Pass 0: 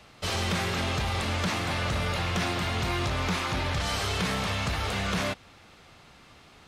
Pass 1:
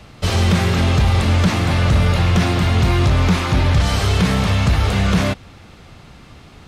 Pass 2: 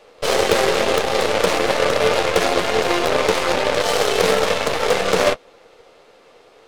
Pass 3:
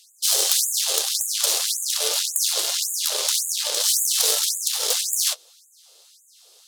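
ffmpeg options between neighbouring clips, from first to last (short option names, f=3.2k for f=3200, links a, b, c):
-af "lowshelf=f=310:g=11,volume=6.5dB"
-af "flanger=delay=8.6:depth=4.6:regen=-39:speed=1.8:shape=triangular,highpass=f=480:t=q:w=4.9,aeval=exprs='0.335*(cos(1*acos(clip(val(0)/0.335,-1,1)))-cos(1*PI/2))+0.0211*(cos(5*acos(clip(val(0)/0.335,-1,1)))-cos(5*PI/2))+0.075*(cos(6*acos(clip(val(0)/0.335,-1,1)))-cos(6*PI/2))+0.0422*(cos(7*acos(clip(val(0)/0.335,-1,1)))-cos(7*PI/2))+0.0841*(cos(8*acos(clip(val(0)/0.335,-1,1)))-cos(8*PI/2))':c=same,volume=4dB"
-af "aemphasis=mode=production:type=cd,aexciter=amount=5.1:drive=8.8:freq=3.2k,afftfilt=real='re*gte(b*sr/1024,300*pow(6700/300,0.5+0.5*sin(2*PI*1.8*pts/sr)))':imag='im*gte(b*sr/1024,300*pow(6700/300,0.5+0.5*sin(2*PI*1.8*pts/sr)))':win_size=1024:overlap=0.75,volume=-14dB"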